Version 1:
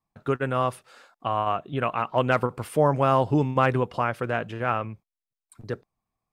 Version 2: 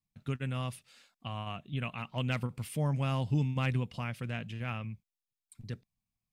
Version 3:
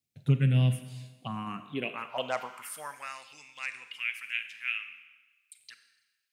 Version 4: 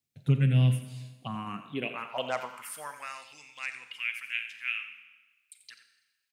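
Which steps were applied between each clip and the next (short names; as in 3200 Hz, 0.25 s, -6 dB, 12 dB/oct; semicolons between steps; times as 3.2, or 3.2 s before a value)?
band shelf 710 Hz -14.5 dB 2.7 oct; gain -3 dB
envelope phaser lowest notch 170 Hz, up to 3200 Hz, full sweep at -27 dBFS; Schroeder reverb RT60 1.2 s, combs from 32 ms, DRR 9.5 dB; high-pass sweep 140 Hz -> 2400 Hz, 1.08–3.26; gain +5.5 dB
echo 87 ms -12.5 dB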